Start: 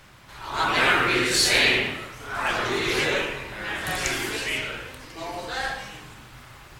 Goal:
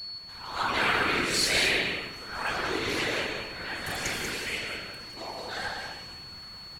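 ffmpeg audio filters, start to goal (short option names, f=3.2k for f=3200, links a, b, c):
-af "afftfilt=real='hypot(re,im)*cos(2*PI*random(0))':imag='hypot(re,im)*sin(2*PI*random(1))':win_size=512:overlap=0.75,aeval=exprs='val(0)+0.0158*sin(2*PI*4400*n/s)':c=same,aecho=1:1:189:0.501"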